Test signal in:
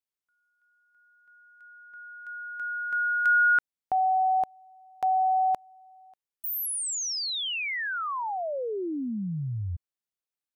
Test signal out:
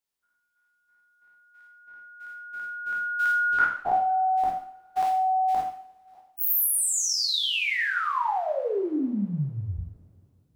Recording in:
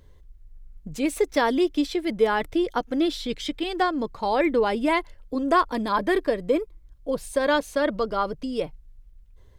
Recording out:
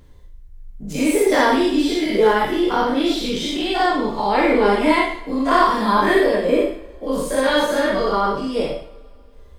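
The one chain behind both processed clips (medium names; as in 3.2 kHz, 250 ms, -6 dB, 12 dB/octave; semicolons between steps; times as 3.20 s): every event in the spectrogram widened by 120 ms; two-slope reverb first 0.56 s, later 2.8 s, from -26 dB, DRR -1.5 dB; trim -2.5 dB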